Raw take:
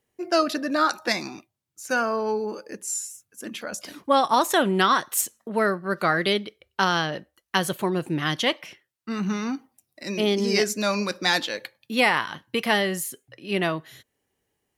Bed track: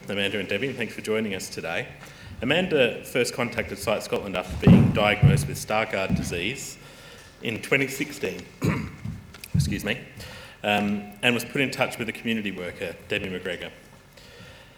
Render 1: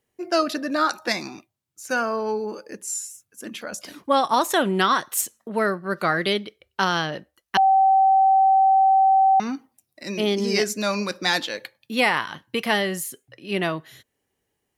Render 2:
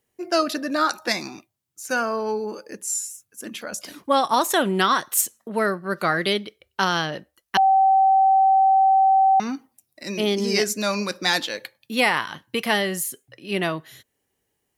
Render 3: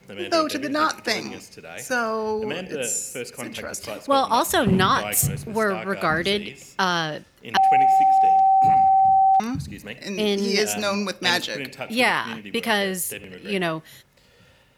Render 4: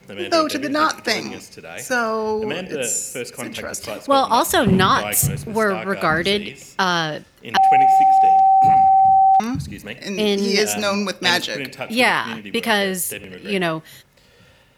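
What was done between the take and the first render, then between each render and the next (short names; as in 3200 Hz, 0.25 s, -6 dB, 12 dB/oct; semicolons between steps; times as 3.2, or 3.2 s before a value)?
7.57–9.4 bleep 771 Hz -13 dBFS
high shelf 6500 Hz +5 dB
add bed track -9 dB
gain +3.5 dB; limiter -3 dBFS, peak gain reduction 2.5 dB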